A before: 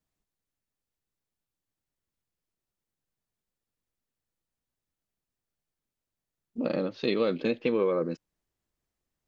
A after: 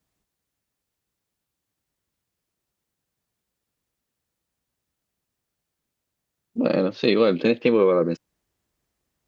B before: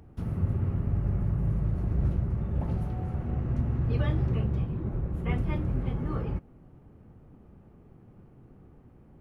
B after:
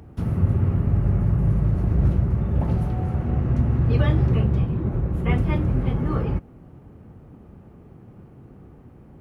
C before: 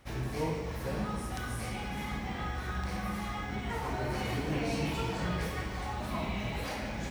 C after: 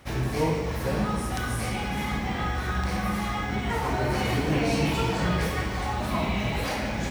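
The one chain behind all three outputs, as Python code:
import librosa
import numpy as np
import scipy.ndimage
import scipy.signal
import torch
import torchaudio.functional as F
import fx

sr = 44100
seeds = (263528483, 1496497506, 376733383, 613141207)

y = scipy.signal.sosfilt(scipy.signal.butter(2, 41.0, 'highpass', fs=sr, output='sos'), x)
y = y * 10.0 ** (8.0 / 20.0)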